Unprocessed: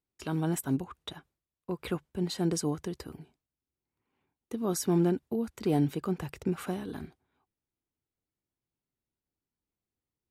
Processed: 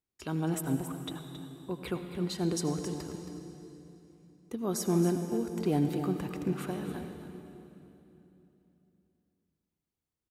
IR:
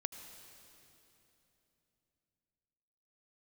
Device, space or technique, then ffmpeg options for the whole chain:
cave: -filter_complex "[0:a]aecho=1:1:272:0.299[a];[1:a]atrim=start_sample=2205[b];[a][b]afir=irnorm=-1:irlink=0"

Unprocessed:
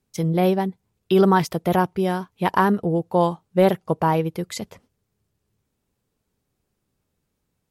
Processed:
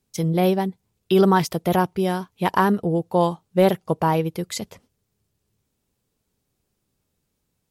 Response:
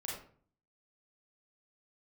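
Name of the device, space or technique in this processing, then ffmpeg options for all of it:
exciter from parts: -filter_complex "[0:a]asplit=2[a][b];[b]highpass=2.3k,asoftclip=type=tanh:threshold=-26.5dB,volume=-5dB[c];[a][c]amix=inputs=2:normalize=0"

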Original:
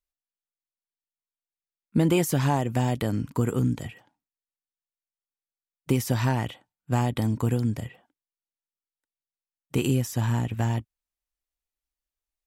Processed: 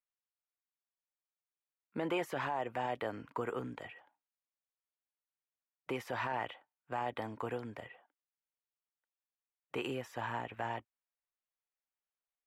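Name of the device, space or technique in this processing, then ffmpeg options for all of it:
DJ mixer with the lows and highs turned down: -filter_complex "[0:a]acrossover=split=450 2800:gain=0.0708 1 0.0708[a][b][c];[a][b][c]amix=inputs=3:normalize=0,alimiter=level_in=0.5dB:limit=-24dB:level=0:latency=1:release=11,volume=-0.5dB,volume=-1.5dB"

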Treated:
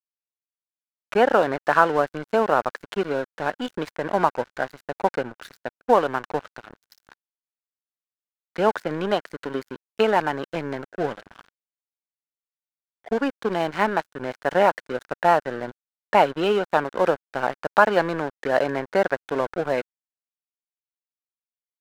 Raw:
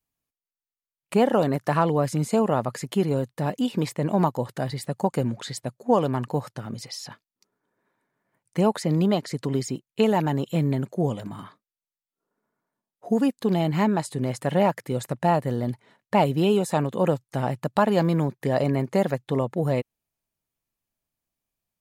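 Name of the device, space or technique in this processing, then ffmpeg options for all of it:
pocket radio on a weak battery: -af "highpass=390,lowpass=3.3k,aeval=exprs='sgn(val(0))*max(abs(val(0))-0.0119,0)':c=same,equalizer=f=1.5k:t=o:w=0.37:g=10,volume=5dB"

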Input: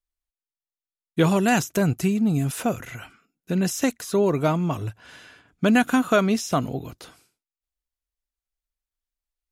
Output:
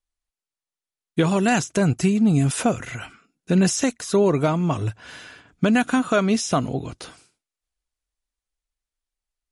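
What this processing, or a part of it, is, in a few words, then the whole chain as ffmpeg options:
low-bitrate web radio: -af "dynaudnorm=f=320:g=11:m=3dB,alimiter=limit=-12.5dB:level=0:latency=1:release=443,volume=3dB" -ar 44100 -c:a libmp3lame -b:a 48k

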